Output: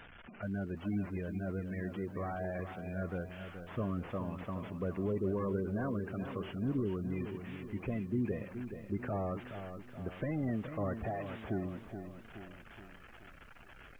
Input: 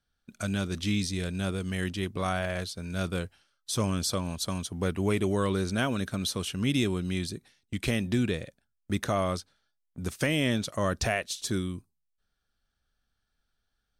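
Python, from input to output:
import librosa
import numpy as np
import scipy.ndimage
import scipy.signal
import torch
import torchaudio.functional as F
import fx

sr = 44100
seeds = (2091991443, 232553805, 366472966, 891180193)

y = fx.delta_mod(x, sr, bps=16000, step_db=-41.0)
y = fx.low_shelf(y, sr, hz=170.0, db=-6.0)
y = fx.spec_gate(y, sr, threshold_db=-20, keep='strong')
y = fx.echo_crushed(y, sr, ms=424, feedback_pct=55, bits=10, wet_db=-9.0)
y = y * librosa.db_to_amplitude(-4.0)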